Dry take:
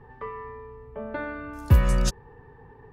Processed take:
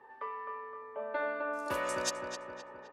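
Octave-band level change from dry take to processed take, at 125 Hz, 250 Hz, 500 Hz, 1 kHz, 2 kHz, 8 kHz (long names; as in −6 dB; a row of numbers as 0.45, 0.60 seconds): −32.0, −13.0, −1.0, 0.0, −0.5, −2.5 decibels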